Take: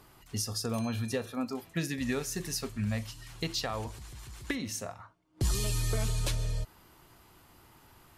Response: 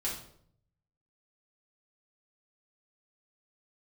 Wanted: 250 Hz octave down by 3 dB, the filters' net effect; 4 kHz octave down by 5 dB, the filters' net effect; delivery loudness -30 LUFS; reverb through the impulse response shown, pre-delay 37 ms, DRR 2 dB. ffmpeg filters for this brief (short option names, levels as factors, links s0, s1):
-filter_complex "[0:a]equalizer=f=250:t=o:g=-3.5,equalizer=f=4000:t=o:g=-6.5,asplit=2[s0][s1];[1:a]atrim=start_sample=2205,adelay=37[s2];[s1][s2]afir=irnorm=-1:irlink=0,volume=0.531[s3];[s0][s3]amix=inputs=2:normalize=0,volume=1.33"